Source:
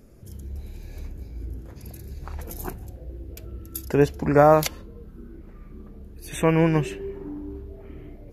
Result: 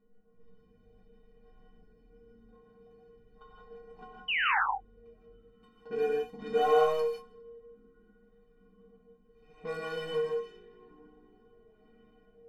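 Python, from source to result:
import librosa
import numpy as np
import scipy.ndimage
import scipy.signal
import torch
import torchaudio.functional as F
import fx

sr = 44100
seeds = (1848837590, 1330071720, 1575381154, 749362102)

y = scipy.signal.medfilt(x, 25)
y = fx.env_lowpass(y, sr, base_hz=2100.0, full_db=-14.5)
y = fx.low_shelf(y, sr, hz=290.0, db=-5.5)
y = y + 0.41 * np.pad(y, (int(4.6 * sr / 1000.0), 0))[:len(y)]
y = fx.stretch_grains(y, sr, factor=1.5, grain_ms=38.0)
y = fx.stiff_resonator(y, sr, f0_hz=220.0, decay_s=0.36, stiffness=0.03)
y = fx.spec_paint(y, sr, seeds[0], shape='fall', start_s=4.28, length_s=0.31, low_hz=730.0, high_hz=3100.0, level_db=-32.0)
y = fx.room_early_taps(y, sr, ms=(16, 30), db=(-9.5, -10.0))
y = fx.rev_gated(y, sr, seeds[1], gate_ms=200, shape='rising', drr_db=-0.5)
y = y * librosa.db_to_amplitude(1.5)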